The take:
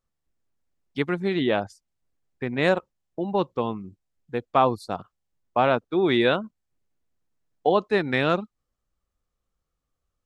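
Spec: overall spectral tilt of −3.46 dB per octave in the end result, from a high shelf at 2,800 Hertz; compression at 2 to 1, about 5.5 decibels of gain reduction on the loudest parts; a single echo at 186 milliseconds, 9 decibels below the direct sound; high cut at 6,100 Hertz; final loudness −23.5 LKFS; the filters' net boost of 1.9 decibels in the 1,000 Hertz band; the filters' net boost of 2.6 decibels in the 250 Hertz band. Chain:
low-pass filter 6,100 Hz
parametric band 250 Hz +3.5 dB
parametric band 1,000 Hz +3.5 dB
high-shelf EQ 2,800 Hz −8.5 dB
downward compressor 2 to 1, threshold −23 dBFS
single-tap delay 186 ms −9 dB
level +4 dB

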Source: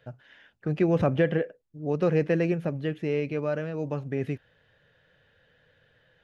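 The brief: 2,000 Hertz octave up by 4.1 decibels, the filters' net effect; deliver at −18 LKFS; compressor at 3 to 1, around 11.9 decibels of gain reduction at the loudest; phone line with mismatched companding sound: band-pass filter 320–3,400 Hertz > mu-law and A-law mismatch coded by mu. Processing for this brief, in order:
parametric band 2,000 Hz +5.5 dB
downward compressor 3 to 1, threshold −35 dBFS
band-pass filter 320–3,400 Hz
mu-law and A-law mismatch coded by mu
level +20 dB

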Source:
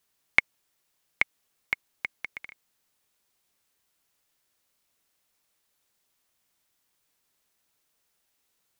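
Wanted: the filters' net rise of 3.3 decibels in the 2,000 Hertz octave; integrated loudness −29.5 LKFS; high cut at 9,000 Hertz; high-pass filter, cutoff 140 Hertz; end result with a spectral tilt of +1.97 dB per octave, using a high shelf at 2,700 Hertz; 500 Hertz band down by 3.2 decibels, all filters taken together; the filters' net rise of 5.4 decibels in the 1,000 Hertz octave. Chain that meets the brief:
high-pass filter 140 Hz
low-pass filter 9,000 Hz
parametric band 500 Hz −7 dB
parametric band 1,000 Hz +8 dB
parametric band 2,000 Hz +5.5 dB
high-shelf EQ 2,700 Hz −7.5 dB
level −2.5 dB

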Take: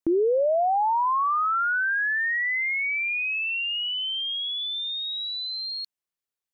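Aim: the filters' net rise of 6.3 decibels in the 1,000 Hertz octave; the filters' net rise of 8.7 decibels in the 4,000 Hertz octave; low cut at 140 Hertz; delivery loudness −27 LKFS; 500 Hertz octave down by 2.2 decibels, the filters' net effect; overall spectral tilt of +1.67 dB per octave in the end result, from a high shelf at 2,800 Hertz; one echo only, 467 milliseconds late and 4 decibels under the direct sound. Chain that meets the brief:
high-pass filter 140 Hz
parametric band 500 Hz −6 dB
parametric band 1,000 Hz +8 dB
high-shelf EQ 2,800 Hz +8 dB
parametric band 4,000 Hz +4.5 dB
single-tap delay 467 ms −4 dB
level −10 dB

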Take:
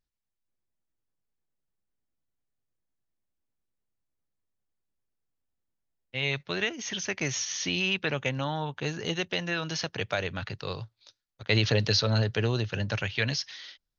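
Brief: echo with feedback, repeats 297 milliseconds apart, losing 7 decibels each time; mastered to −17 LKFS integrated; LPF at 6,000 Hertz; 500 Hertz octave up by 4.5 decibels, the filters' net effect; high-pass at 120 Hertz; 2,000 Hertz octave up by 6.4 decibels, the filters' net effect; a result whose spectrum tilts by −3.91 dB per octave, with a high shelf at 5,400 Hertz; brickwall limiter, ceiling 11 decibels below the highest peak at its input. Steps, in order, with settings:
high-pass filter 120 Hz
low-pass filter 6,000 Hz
parametric band 500 Hz +5 dB
parametric band 2,000 Hz +8.5 dB
high-shelf EQ 5,400 Hz −3 dB
brickwall limiter −16.5 dBFS
repeating echo 297 ms, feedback 45%, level −7 dB
level +11 dB

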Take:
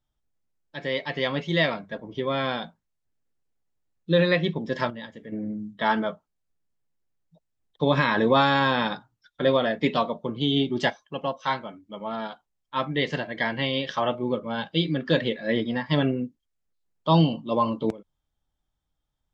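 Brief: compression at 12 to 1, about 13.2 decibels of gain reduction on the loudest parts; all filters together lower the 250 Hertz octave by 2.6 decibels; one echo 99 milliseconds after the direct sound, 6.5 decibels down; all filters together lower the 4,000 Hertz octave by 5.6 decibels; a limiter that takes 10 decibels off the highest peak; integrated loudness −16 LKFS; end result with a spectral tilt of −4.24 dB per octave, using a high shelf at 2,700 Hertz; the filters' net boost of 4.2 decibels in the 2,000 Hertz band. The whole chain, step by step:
parametric band 250 Hz −3.5 dB
parametric band 2,000 Hz +8 dB
high-shelf EQ 2,700 Hz −3.5 dB
parametric band 4,000 Hz −8 dB
downward compressor 12 to 1, threshold −29 dBFS
brickwall limiter −25.5 dBFS
single-tap delay 99 ms −6.5 dB
level +20 dB

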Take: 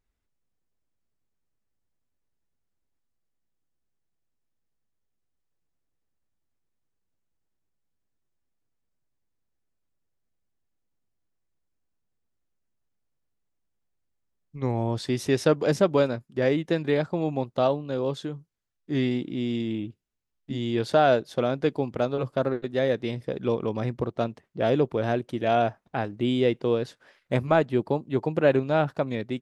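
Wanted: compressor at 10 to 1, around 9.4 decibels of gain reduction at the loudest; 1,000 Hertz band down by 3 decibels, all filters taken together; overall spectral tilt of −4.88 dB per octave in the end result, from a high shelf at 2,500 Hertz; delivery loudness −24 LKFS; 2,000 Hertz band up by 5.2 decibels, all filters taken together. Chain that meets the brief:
parametric band 1,000 Hz −7.5 dB
parametric band 2,000 Hz +8 dB
high-shelf EQ 2,500 Hz +3.5 dB
downward compressor 10 to 1, threshold −26 dBFS
level +8.5 dB

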